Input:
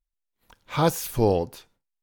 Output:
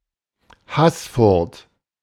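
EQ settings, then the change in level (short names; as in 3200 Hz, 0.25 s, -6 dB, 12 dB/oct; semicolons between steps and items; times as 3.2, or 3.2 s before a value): HPF 43 Hz; air absorption 73 m; +7.0 dB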